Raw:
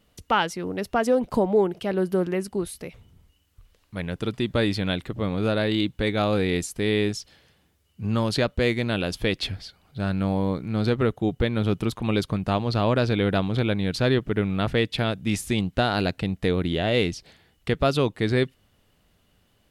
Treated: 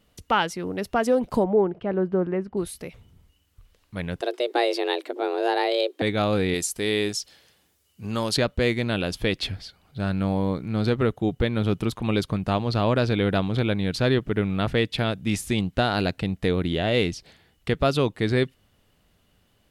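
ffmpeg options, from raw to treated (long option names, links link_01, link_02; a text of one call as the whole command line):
ffmpeg -i in.wav -filter_complex "[0:a]asettb=1/sr,asplit=3[link_01][link_02][link_03];[link_01]atrim=end=1.444[link_04];[link_02]atrim=start=1.44:end=2.57,asetpts=PTS-STARTPTS,afade=type=in:duration=0.004:curve=qsin,afade=type=out:start_time=1.126:duration=0.004:curve=qsin,lowpass=1600[link_05];[link_03]atrim=start=2.566[link_06];[link_04][link_05]acrossfade=duration=0.004:curve1=hsin:curve2=qsin[link_07];[link_07][link_06]acrossfade=duration=0.004:curve1=qsin:curve2=hsin,asettb=1/sr,asplit=3[link_08][link_09][link_10];[link_08]atrim=end=4.214[link_11];[link_09]atrim=start=4.21:end=6.02,asetpts=PTS-STARTPTS,afade=type=in:duration=0.004:curve=qsin,afade=type=out:start_time=1.806:duration=0.004:curve=qsin,afreqshift=240[link_12];[link_10]atrim=start=6.016[link_13];[link_11][link_12]acrossfade=duration=0.004:curve1=hsin:curve2=qsin[link_14];[link_14][link_13]acrossfade=duration=0.004:curve1=qsin:curve2=hsin,asettb=1/sr,asplit=3[link_15][link_16][link_17];[link_15]atrim=end=6.544[link_18];[link_16]atrim=start=6.54:end=8.37,asetpts=PTS-STARTPTS,afade=type=in:duration=0.004:curve=qsin,afade=type=out:start_time=1.826:duration=0.004:curve=qsin,bass=frequency=250:gain=-7,treble=frequency=4000:gain=7[link_19];[link_17]atrim=start=8.366[link_20];[link_18][link_19]acrossfade=duration=0.004:curve1=hsin:curve2=qsin[link_21];[link_21][link_20]acrossfade=duration=0.004:curve1=qsin:curve2=hsin" out.wav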